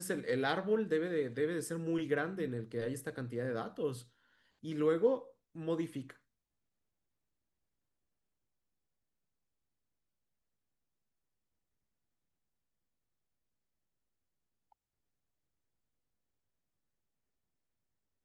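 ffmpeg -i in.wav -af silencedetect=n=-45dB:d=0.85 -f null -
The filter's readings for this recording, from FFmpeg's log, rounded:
silence_start: 6.11
silence_end: 18.25 | silence_duration: 12.14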